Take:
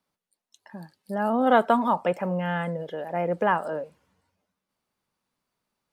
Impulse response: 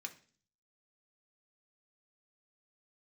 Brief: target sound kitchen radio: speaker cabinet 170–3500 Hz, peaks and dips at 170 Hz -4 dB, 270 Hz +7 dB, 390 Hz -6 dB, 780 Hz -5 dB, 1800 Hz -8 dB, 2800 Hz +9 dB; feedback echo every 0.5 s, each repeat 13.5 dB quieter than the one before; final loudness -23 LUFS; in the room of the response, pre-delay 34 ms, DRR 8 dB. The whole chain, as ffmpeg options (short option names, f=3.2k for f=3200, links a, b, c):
-filter_complex "[0:a]aecho=1:1:500|1000:0.211|0.0444,asplit=2[a][b];[1:a]atrim=start_sample=2205,adelay=34[c];[b][c]afir=irnorm=-1:irlink=0,volume=-5.5dB[d];[a][d]amix=inputs=2:normalize=0,highpass=170,equalizer=f=170:t=q:w=4:g=-4,equalizer=f=270:t=q:w=4:g=7,equalizer=f=390:t=q:w=4:g=-6,equalizer=f=780:t=q:w=4:g=-5,equalizer=f=1.8k:t=q:w=4:g=-8,equalizer=f=2.8k:t=q:w=4:g=9,lowpass=f=3.5k:w=0.5412,lowpass=f=3.5k:w=1.3066,volume=3dB"